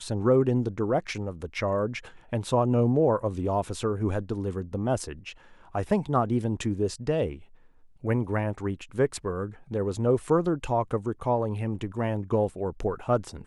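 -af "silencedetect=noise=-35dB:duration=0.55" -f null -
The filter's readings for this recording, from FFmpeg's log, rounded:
silence_start: 7.36
silence_end: 8.04 | silence_duration: 0.68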